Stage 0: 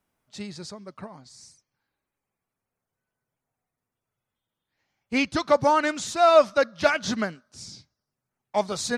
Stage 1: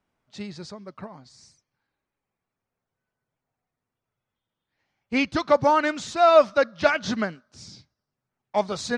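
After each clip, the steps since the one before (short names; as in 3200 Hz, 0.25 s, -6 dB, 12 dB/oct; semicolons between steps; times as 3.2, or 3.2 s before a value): Bessel low-pass 4700 Hz, order 2; gain +1 dB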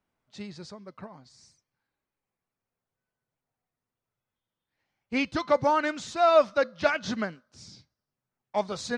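resonator 510 Hz, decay 0.29 s, harmonics all, mix 40%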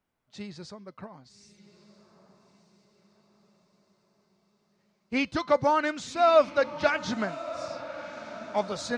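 diffused feedback echo 1.232 s, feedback 51%, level -14 dB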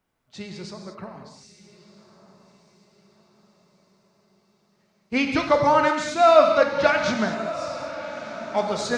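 non-linear reverb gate 0.26 s flat, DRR 3.5 dB; gain +4.5 dB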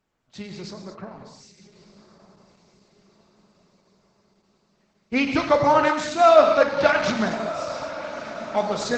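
gain +1 dB; Opus 12 kbps 48000 Hz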